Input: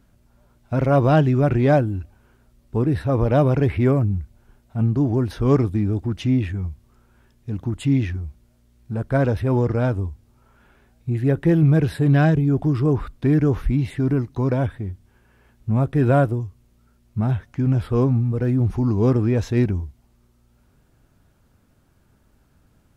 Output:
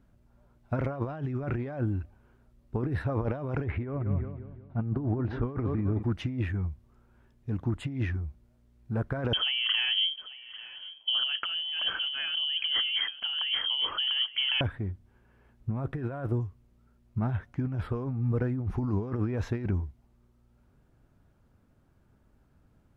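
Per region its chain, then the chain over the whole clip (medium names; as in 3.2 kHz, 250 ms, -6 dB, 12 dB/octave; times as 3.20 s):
3.64–6.03 s: distance through air 230 m + feedback delay 182 ms, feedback 48%, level -14 dB
9.33–14.61 s: compressor with a negative ratio -23 dBFS + delay 844 ms -16 dB + frequency inversion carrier 3.2 kHz
whole clip: treble shelf 2.7 kHz -10 dB; compressor with a negative ratio -21 dBFS, ratio -0.5; dynamic bell 1.5 kHz, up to +7 dB, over -45 dBFS, Q 0.71; trim -7.5 dB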